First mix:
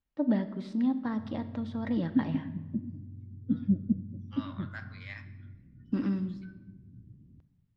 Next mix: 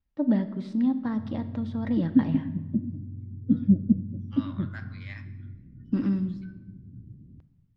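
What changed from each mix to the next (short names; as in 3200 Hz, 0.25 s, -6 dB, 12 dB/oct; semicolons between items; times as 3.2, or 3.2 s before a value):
first voice: add low shelf 200 Hz +9 dB; background +6.5 dB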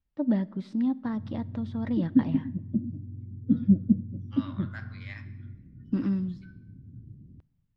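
first voice: send -11.5 dB; background: send -10.5 dB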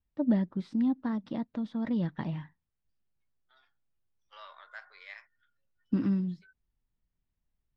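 background: muted; reverb: off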